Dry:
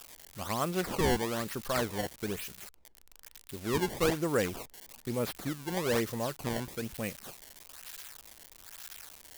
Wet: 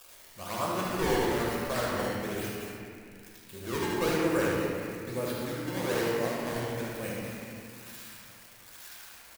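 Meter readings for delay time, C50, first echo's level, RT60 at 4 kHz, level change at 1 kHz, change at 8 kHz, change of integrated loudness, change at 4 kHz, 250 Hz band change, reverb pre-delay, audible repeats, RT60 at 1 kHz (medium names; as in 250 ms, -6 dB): 75 ms, -3.5 dB, -4.5 dB, 1.9 s, +2.5 dB, -0.5 dB, +2.0 dB, +0.5 dB, +2.0 dB, 3 ms, 1, 2.3 s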